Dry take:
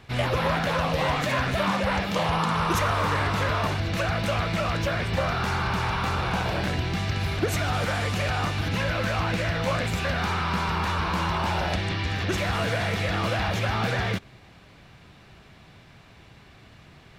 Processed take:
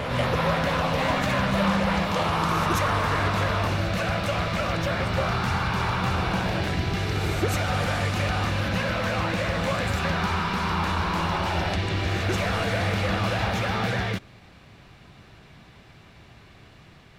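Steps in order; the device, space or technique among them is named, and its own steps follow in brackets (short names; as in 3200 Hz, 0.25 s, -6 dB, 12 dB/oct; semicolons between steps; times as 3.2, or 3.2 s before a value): reverse reverb (reverse; reverb RT60 2.8 s, pre-delay 0.12 s, DRR 3.5 dB; reverse); gain -1 dB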